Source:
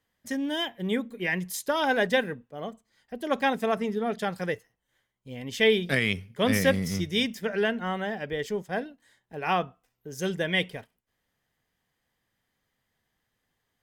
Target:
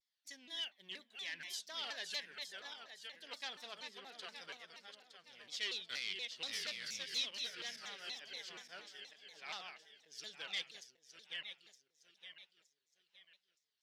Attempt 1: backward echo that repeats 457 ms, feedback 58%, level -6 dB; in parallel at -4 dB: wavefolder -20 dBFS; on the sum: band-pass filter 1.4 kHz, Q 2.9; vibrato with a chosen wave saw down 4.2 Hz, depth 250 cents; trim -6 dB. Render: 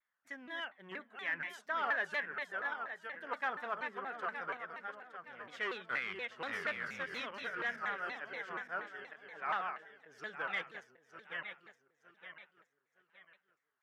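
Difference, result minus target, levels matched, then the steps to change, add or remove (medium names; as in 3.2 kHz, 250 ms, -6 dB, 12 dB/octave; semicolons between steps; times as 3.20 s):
4 kHz band -13.5 dB
change: band-pass filter 4.4 kHz, Q 2.9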